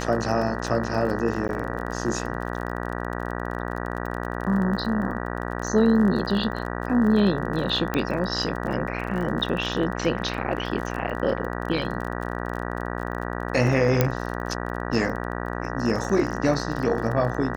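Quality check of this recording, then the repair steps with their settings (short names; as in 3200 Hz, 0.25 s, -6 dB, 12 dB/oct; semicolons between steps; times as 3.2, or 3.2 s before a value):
buzz 60 Hz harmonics 32 -30 dBFS
crackle 29/s -31 dBFS
1.48–1.49 gap 9.9 ms
7.94 pop -12 dBFS
14.01 pop -5 dBFS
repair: de-click; de-hum 60 Hz, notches 32; interpolate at 1.48, 9.9 ms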